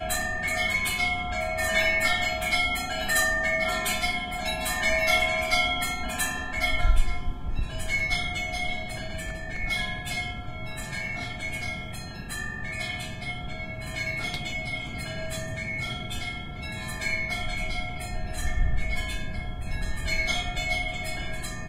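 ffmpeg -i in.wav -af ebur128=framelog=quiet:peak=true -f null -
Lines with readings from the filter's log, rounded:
Integrated loudness:
  I:         -27.9 LUFS
  Threshold: -37.9 LUFS
Loudness range:
  LRA:         8.1 LU
  Threshold: -48.1 LUFS
  LRA low:   -32.3 LUFS
  LRA high:  -24.2 LUFS
True peak:
  Peak:       -7.8 dBFS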